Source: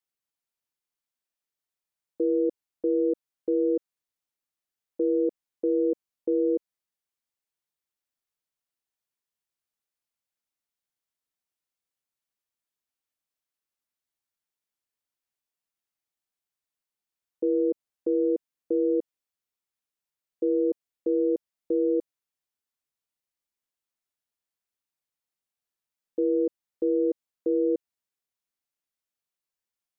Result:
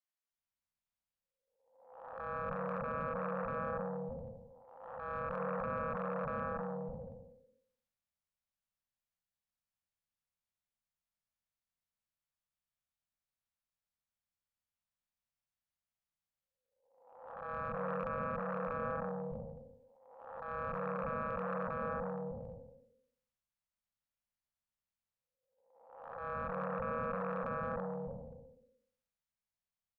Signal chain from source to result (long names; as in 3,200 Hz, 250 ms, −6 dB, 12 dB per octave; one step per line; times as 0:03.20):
spectrum smeared in time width 694 ms
spectral tilt −2.5 dB per octave
harmonic generator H 3 −13 dB, 6 −29 dB, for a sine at −19 dBFS
mains-hum notches 50/100/150/200/250/300/350/400/450/500 Hz
brickwall limiter −25 dBFS, peak gain reduction 7 dB
elliptic band-stop filter 230–530 Hz
multiband delay without the direct sound highs, lows 310 ms, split 520 Hz
transient designer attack −12 dB, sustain +3 dB
level +8.5 dB